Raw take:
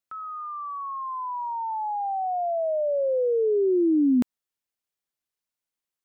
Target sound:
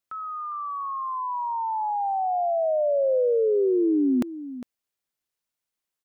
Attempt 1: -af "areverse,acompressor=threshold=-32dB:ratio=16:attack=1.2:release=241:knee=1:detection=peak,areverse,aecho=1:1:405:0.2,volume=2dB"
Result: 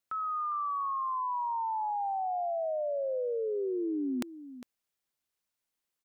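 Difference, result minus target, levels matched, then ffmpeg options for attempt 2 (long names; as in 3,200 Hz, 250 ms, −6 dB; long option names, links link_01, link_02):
downward compressor: peak gain reduction +11 dB
-af "areverse,acompressor=threshold=-20.5dB:ratio=16:attack=1.2:release=241:knee=1:detection=peak,areverse,aecho=1:1:405:0.2,volume=2dB"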